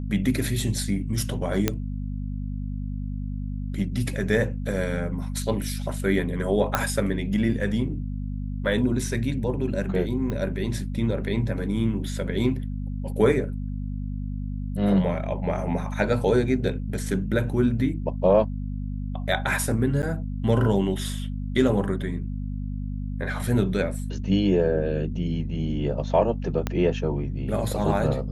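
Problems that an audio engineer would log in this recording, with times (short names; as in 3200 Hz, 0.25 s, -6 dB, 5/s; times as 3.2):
hum 50 Hz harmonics 5 -30 dBFS
1.68 pop -6 dBFS
6.75 pop -7 dBFS
10.3 pop -18 dBFS
20.02–20.03 gap 9.5 ms
26.67 pop -11 dBFS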